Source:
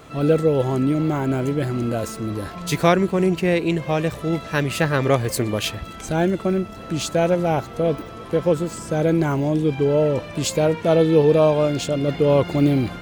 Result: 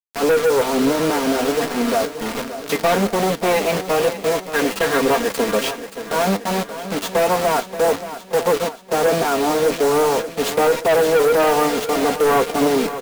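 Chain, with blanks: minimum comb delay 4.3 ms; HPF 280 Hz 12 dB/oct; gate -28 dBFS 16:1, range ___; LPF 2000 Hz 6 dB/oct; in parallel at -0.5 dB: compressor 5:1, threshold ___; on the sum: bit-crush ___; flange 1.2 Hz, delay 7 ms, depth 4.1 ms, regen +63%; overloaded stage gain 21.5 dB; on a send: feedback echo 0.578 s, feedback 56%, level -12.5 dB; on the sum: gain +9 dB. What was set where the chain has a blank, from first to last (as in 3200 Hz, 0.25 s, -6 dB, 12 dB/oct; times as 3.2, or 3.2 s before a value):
-6 dB, -35 dBFS, 5-bit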